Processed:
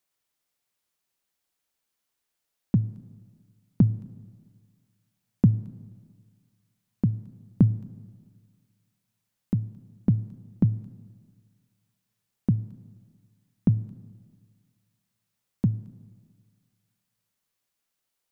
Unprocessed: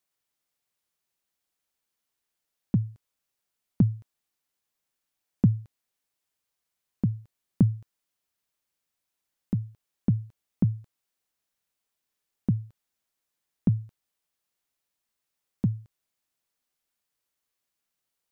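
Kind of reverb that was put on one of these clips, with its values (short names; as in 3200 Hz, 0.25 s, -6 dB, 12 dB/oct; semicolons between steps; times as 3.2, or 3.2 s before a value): Schroeder reverb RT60 1.8 s, combs from 25 ms, DRR 16.5 dB; gain +2 dB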